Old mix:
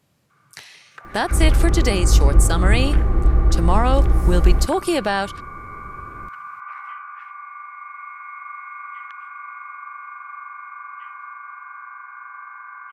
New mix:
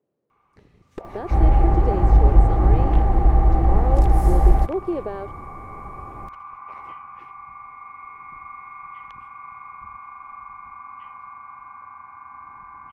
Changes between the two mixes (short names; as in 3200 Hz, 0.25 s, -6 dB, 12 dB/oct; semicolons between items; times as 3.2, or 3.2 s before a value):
speech: add band-pass 420 Hz, Q 3.3; first sound: remove resonant high-pass 1500 Hz, resonance Q 6.2; second sound: add bell 790 Hz +13.5 dB 0.49 oct